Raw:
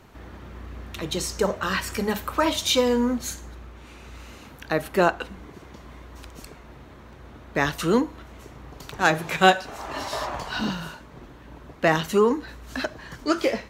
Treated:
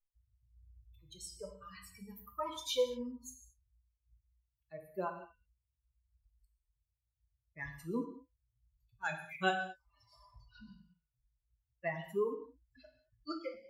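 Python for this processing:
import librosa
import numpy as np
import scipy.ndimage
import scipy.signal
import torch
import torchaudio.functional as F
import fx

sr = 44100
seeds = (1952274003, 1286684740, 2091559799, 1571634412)

y = fx.bin_expand(x, sr, power=3.0)
y = fx.comb_fb(y, sr, f0_hz=500.0, decay_s=0.18, harmonics='all', damping=0.0, mix_pct=70)
y = fx.rev_gated(y, sr, seeds[0], gate_ms=250, shape='falling', drr_db=4.0)
y = F.gain(torch.from_numpy(y), -4.0).numpy()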